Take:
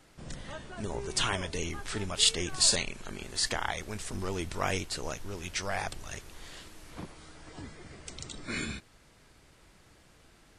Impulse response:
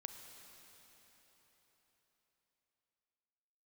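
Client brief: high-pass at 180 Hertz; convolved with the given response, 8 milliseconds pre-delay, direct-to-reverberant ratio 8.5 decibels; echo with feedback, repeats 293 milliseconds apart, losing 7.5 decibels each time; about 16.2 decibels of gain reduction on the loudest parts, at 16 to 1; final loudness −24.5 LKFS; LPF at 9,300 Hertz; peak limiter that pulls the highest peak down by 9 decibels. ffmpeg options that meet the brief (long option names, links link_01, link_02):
-filter_complex "[0:a]highpass=180,lowpass=9300,acompressor=threshold=-36dB:ratio=16,alimiter=level_in=7.5dB:limit=-24dB:level=0:latency=1,volume=-7.5dB,aecho=1:1:293|586|879|1172|1465:0.422|0.177|0.0744|0.0312|0.0131,asplit=2[link_01][link_02];[1:a]atrim=start_sample=2205,adelay=8[link_03];[link_02][link_03]afir=irnorm=-1:irlink=0,volume=-4.5dB[link_04];[link_01][link_04]amix=inputs=2:normalize=0,volume=18.5dB"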